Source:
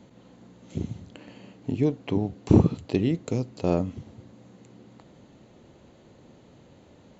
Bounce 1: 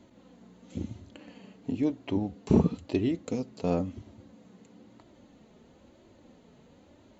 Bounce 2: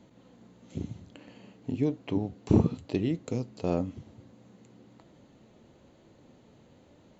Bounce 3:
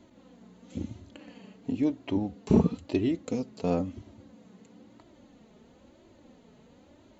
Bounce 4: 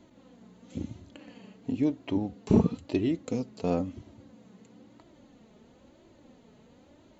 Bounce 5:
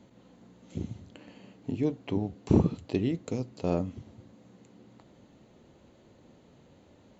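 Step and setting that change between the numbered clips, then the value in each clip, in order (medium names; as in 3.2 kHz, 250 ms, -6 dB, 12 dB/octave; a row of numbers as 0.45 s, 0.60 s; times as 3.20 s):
flange, regen: -24%, +85%, -2%, +19%, -80%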